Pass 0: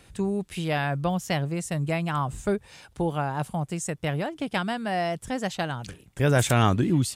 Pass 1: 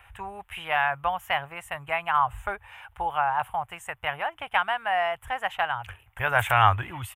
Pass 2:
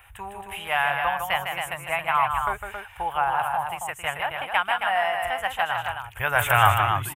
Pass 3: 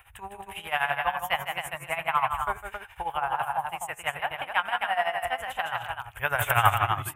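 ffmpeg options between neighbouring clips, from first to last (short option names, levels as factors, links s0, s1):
-af "firequalizer=gain_entry='entry(100,0);entry(150,-21);entry(240,-25);entry(810,8);entry(3000,3);entry(4400,-24);entry(13000,1)':delay=0.05:min_phase=1"
-filter_complex "[0:a]crystalizer=i=1.5:c=0,asplit=2[s0][s1];[s1]aecho=0:1:154.5|271.1:0.501|0.501[s2];[s0][s2]amix=inputs=2:normalize=0"
-af "bandreject=f=93.02:t=h:w=4,bandreject=f=186.04:t=h:w=4,bandreject=f=279.06:t=h:w=4,bandreject=f=372.08:t=h:w=4,bandreject=f=465.1:t=h:w=4,bandreject=f=558.12:t=h:w=4,bandreject=f=651.14:t=h:w=4,bandreject=f=744.16:t=h:w=4,bandreject=f=837.18:t=h:w=4,bandreject=f=930.2:t=h:w=4,bandreject=f=1023.22:t=h:w=4,bandreject=f=1116.24:t=h:w=4,bandreject=f=1209.26:t=h:w=4,bandreject=f=1302.28:t=h:w=4,bandreject=f=1395.3:t=h:w=4,bandreject=f=1488.32:t=h:w=4,bandreject=f=1581.34:t=h:w=4,bandreject=f=1674.36:t=h:w=4,bandreject=f=1767.38:t=h:w=4,bandreject=f=1860.4:t=h:w=4,bandreject=f=1953.42:t=h:w=4,bandreject=f=2046.44:t=h:w=4,bandreject=f=2139.46:t=h:w=4,bandreject=f=2232.48:t=h:w=4,bandreject=f=2325.5:t=h:w=4,bandreject=f=2418.52:t=h:w=4,bandreject=f=2511.54:t=h:w=4,bandreject=f=2604.56:t=h:w=4,bandreject=f=2697.58:t=h:w=4,tremolo=f=12:d=0.77"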